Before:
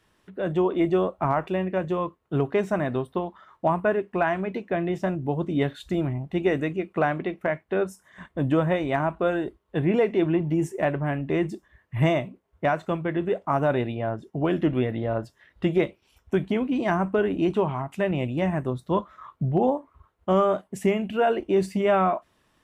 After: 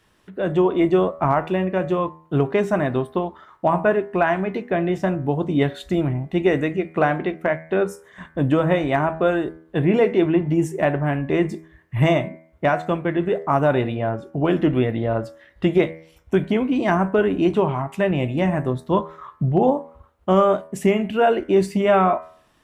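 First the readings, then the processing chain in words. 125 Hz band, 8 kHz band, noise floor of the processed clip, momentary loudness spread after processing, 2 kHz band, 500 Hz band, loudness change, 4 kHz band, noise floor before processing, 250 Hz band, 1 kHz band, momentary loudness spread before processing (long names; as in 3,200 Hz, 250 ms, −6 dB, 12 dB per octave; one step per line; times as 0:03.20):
+4.5 dB, can't be measured, −57 dBFS, 8 LU, +4.5 dB, +4.5 dB, +4.5 dB, +5.0 dB, −68 dBFS, +4.5 dB, +4.5 dB, 8 LU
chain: hum removal 80.66 Hz, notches 30
level +5 dB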